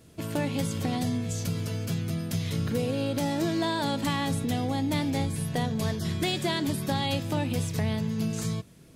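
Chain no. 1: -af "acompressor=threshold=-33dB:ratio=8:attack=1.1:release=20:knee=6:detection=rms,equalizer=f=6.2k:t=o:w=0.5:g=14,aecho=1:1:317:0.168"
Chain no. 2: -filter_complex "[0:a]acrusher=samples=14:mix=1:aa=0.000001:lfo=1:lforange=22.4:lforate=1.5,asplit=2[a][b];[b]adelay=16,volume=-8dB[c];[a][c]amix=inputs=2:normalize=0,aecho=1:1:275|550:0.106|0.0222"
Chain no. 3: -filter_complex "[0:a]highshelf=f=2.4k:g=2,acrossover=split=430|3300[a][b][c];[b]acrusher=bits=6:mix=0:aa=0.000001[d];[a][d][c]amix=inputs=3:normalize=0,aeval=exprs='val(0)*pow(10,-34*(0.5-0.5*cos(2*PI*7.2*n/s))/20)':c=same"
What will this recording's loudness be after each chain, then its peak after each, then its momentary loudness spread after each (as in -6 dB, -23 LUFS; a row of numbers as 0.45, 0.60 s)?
-35.5, -29.0, -35.5 LUFS; -20.5, -15.0, -15.5 dBFS; 3, 4, 4 LU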